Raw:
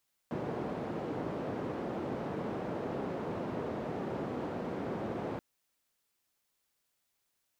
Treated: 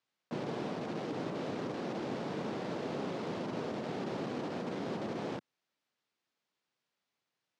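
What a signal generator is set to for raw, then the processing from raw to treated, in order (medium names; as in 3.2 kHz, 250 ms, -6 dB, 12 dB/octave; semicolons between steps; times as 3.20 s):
noise band 140–490 Hz, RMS -37 dBFS 5.08 s
block-companded coder 3-bit; Chebyshev band-pass 150–5000 Hz, order 2; treble shelf 4.4 kHz -8.5 dB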